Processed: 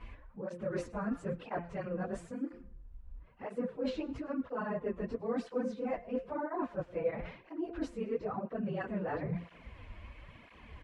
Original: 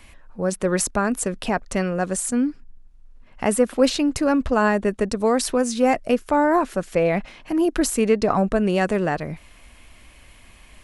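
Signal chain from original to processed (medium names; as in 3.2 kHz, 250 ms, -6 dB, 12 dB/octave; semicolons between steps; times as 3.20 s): phase randomisation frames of 50 ms; low-pass 2.3 kHz 12 dB/octave; bass shelf 240 Hz +4 dB; de-hum 173.8 Hz, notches 19; reverse; compression 16:1, threshold -31 dBFS, peak gain reduction 22 dB; reverse; small resonant body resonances 500/990 Hz, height 6 dB; on a send: frequency-shifting echo 107 ms, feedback 38%, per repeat -36 Hz, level -21 dB; on the sum: cancelling through-zero flanger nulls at 1 Hz, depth 8 ms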